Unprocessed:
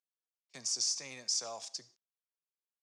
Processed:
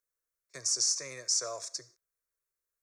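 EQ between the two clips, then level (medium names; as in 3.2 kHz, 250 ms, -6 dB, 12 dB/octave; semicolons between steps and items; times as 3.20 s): bass shelf 67 Hz +10 dB; static phaser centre 820 Hz, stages 6; band-stop 4.9 kHz, Q 13; +8.0 dB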